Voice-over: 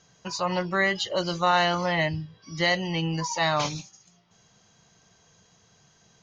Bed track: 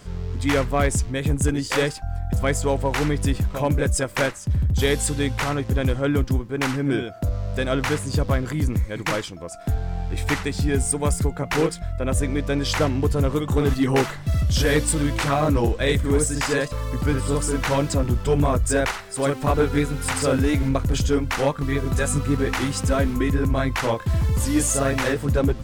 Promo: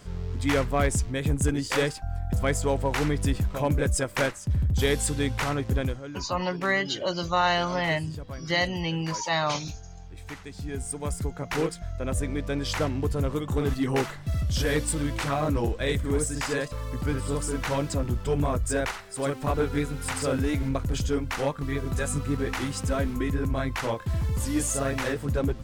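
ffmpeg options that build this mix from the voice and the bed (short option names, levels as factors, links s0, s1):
-filter_complex "[0:a]adelay=5900,volume=0.841[s0];[1:a]volume=2.37,afade=t=out:st=5.76:d=0.27:silence=0.211349,afade=t=in:st=10.39:d=1.21:silence=0.281838[s1];[s0][s1]amix=inputs=2:normalize=0"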